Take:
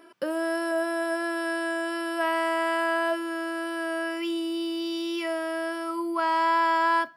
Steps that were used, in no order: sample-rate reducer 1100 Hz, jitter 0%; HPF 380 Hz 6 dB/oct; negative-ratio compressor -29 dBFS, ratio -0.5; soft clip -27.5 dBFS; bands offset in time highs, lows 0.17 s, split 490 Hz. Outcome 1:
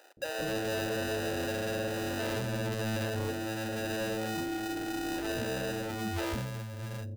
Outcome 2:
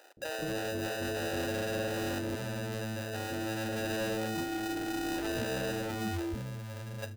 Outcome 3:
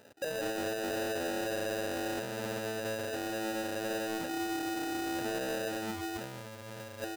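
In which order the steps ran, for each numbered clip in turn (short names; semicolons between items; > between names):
HPF > sample-rate reducer > bands offset in time > negative-ratio compressor > soft clip; negative-ratio compressor > HPF > sample-rate reducer > bands offset in time > soft clip; bands offset in time > sample-rate reducer > negative-ratio compressor > HPF > soft clip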